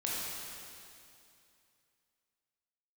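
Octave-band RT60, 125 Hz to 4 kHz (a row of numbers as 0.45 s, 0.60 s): 2.7 s, 2.7 s, 2.6 s, 2.6 s, 2.5 s, 2.5 s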